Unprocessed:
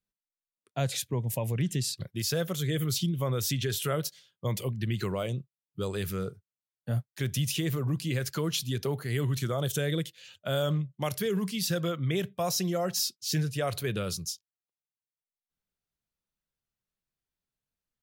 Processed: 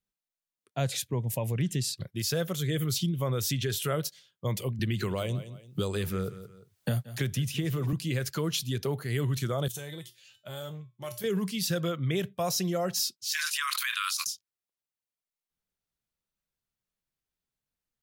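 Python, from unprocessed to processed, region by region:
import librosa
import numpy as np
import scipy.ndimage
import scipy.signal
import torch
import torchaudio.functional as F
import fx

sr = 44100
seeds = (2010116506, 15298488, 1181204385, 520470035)

y = fx.chain(x, sr, fx.echo_feedback(ms=173, feedback_pct=19, wet_db=-17.0),
    fx.band_squash(depth_pct=100), at=(4.79, 7.93))
y = fx.chain(y, sr, fx.high_shelf(hz=4100.0, db=7.5),
    fx.comb_fb(f0_hz=120.0, decay_s=0.26, harmonics='odd', damping=0.0, mix_pct=80),
    fx.transformer_sat(knee_hz=510.0), at=(9.68, 11.24))
y = fx.chain(y, sr, fx.brickwall_highpass(low_hz=980.0),
    fx.env_flatten(amount_pct=100), at=(13.31, 14.27))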